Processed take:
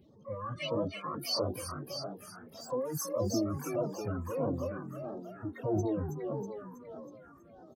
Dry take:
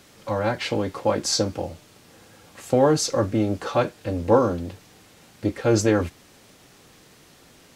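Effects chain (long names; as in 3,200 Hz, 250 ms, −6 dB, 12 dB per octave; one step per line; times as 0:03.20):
expanding power law on the bin magnitudes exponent 3.3
brickwall limiter −16 dBFS, peak gain reduction 6.5 dB
parametric band 9,200 Hz +3 dB 0.49 octaves
on a send: echo with shifted repeats 322 ms, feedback 58%, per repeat +48 Hz, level −4 dB
on the sum: pitch-shifted copies added +12 semitones −7 dB
all-pass phaser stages 4, 1.6 Hz, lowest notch 560–2,400 Hz
level −8.5 dB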